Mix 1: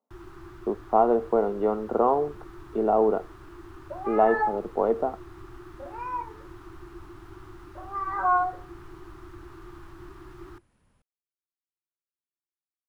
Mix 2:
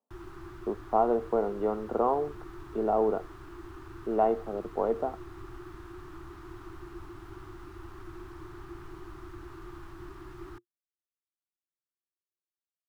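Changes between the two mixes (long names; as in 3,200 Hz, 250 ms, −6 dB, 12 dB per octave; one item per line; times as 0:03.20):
speech −4.5 dB
second sound: muted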